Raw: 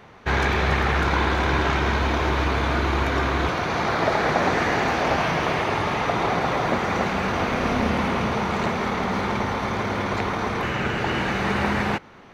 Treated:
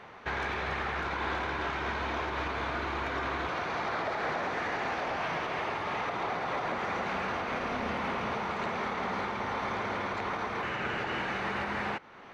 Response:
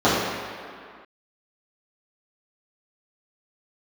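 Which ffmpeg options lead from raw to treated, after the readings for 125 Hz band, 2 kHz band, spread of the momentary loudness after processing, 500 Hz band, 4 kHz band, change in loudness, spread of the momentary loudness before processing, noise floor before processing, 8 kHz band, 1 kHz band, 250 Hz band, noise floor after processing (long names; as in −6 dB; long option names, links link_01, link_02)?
−16.0 dB, −8.5 dB, 1 LU, −10.5 dB, −10.5 dB, −10.0 dB, 4 LU, −31 dBFS, −14.0 dB, −8.5 dB, −13.5 dB, −39 dBFS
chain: -filter_complex "[0:a]asplit=2[link_01][link_02];[link_02]highpass=frequency=720:poles=1,volume=10dB,asoftclip=type=tanh:threshold=-8.5dB[link_03];[link_01][link_03]amix=inputs=2:normalize=0,lowpass=frequency=2600:poles=1,volume=-6dB,alimiter=limit=-20.5dB:level=0:latency=1:release=331,volume=-4dB"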